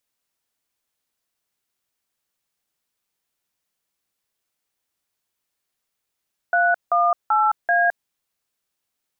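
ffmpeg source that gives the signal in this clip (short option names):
-f lavfi -i "aevalsrc='0.133*clip(min(mod(t,0.386),0.214-mod(t,0.386))/0.002,0,1)*(eq(floor(t/0.386),0)*(sin(2*PI*697*mod(t,0.386))+sin(2*PI*1477*mod(t,0.386)))+eq(floor(t/0.386),1)*(sin(2*PI*697*mod(t,0.386))+sin(2*PI*1209*mod(t,0.386)))+eq(floor(t/0.386),2)*(sin(2*PI*852*mod(t,0.386))+sin(2*PI*1336*mod(t,0.386)))+eq(floor(t/0.386),3)*(sin(2*PI*697*mod(t,0.386))+sin(2*PI*1633*mod(t,0.386))))':d=1.544:s=44100"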